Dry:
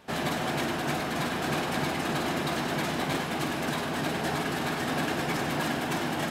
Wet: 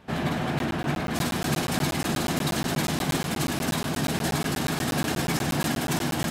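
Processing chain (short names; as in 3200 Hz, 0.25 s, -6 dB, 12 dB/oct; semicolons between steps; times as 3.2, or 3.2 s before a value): tone controls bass +8 dB, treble -5 dB, from 1.13 s treble +9 dB; crackling interface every 0.12 s, samples 512, zero, from 0.59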